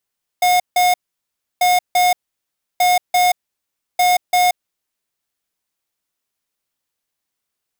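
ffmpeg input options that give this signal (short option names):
-f lavfi -i "aevalsrc='0.211*(2*lt(mod(721*t,1),0.5)-1)*clip(min(mod(mod(t,1.19),0.34),0.18-mod(mod(t,1.19),0.34))/0.005,0,1)*lt(mod(t,1.19),0.68)':d=4.76:s=44100"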